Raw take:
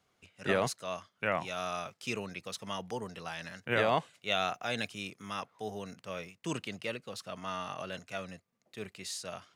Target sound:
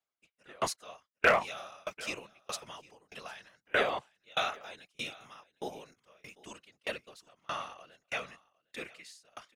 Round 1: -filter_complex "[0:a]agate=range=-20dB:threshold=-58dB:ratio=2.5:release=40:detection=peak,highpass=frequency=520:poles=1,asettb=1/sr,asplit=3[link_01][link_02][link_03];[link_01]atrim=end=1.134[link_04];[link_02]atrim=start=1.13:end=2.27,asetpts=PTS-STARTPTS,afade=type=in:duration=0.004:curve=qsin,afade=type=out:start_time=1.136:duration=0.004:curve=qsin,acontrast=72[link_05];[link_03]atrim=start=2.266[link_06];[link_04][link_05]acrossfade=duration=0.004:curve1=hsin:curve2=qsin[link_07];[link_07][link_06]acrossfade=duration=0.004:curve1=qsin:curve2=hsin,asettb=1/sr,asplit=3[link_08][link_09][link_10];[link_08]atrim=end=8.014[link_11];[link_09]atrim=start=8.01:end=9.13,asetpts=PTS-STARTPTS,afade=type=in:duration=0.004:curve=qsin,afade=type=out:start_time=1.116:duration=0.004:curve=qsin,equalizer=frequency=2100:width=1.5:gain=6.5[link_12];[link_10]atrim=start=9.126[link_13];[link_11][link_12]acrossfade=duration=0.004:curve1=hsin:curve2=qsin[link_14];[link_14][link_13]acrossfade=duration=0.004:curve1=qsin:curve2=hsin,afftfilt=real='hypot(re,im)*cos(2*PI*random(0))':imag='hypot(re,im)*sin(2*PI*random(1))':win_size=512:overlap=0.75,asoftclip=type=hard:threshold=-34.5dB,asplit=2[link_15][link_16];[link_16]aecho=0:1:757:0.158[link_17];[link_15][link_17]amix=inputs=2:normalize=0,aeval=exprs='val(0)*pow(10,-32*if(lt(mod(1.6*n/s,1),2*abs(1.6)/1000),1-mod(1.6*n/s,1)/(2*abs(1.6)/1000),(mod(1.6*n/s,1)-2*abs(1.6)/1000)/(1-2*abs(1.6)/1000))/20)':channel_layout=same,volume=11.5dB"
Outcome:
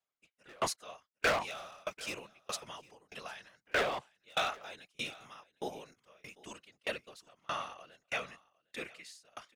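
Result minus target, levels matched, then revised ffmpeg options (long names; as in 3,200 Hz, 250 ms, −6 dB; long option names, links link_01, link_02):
hard clipping: distortion +14 dB
-filter_complex "[0:a]agate=range=-20dB:threshold=-58dB:ratio=2.5:release=40:detection=peak,highpass=frequency=520:poles=1,asettb=1/sr,asplit=3[link_01][link_02][link_03];[link_01]atrim=end=1.134[link_04];[link_02]atrim=start=1.13:end=2.27,asetpts=PTS-STARTPTS,afade=type=in:duration=0.004:curve=qsin,afade=type=out:start_time=1.136:duration=0.004:curve=qsin,acontrast=72[link_05];[link_03]atrim=start=2.266[link_06];[link_04][link_05]acrossfade=duration=0.004:curve1=hsin:curve2=qsin[link_07];[link_07][link_06]acrossfade=duration=0.004:curve1=qsin:curve2=hsin,asettb=1/sr,asplit=3[link_08][link_09][link_10];[link_08]atrim=end=8.014[link_11];[link_09]atrim=start=8.01:end=9.13,asetpts=PTS-STARTPTS,afade=type=in:duration=0.004:curve=qsin,afade=type=out:start_time=1.116:duration=0.004:curve=qsin,equalizer=frequency=2100:width=1.5:gain=6.5[link_12];[link_10]atrim=start=9.126[link_13];[link_11][link_12]acrossfade=duration=0.004:curve1=hsin:curve2=qsin[link_14];[link_14][link_13]acrossfade=duration=0.004:curve1=qsin:curve2=hsin,afftfilt=real='hypot(re,im)*cos(2*PI*random(0))':imag='hypot(re,im)*sin(2*PI*random(1))':win_size=512:overlap=0.75,asoftclip=type=hard:threshold=-25dB,asplit=2[link_15][link_16];[link_16]aecho=0:1:757:0.158[link_17];[link_15][link_17]amix=inputs=2:normalize=0,aeval=exprs='val(0)*pow(10,-32*if(lt(mod(1.6*n/s,1),2*abs(1.6)/1000),1-mod(1.6*n/s,1)/(2*abs(1.6)/1000),(mod(1.6*n/s,1)-2*abs(1.6)/1000)/(1-2*abs(1.6)/1000))/20)':channel_layout=same,volume=11.5dB"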